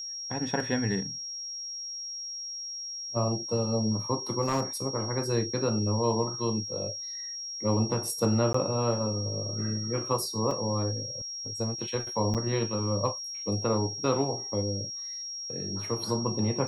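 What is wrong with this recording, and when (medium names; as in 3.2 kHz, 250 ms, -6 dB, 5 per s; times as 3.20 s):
whine 5.6 kHz -35 dBFS
4.41–4.63 s: clipped -22 dBFS
8.53–8.54 s: dropout 14 ms
10.51 s: dropout 2.7 ms
12.34–12.35 s: dropout 7.7 ms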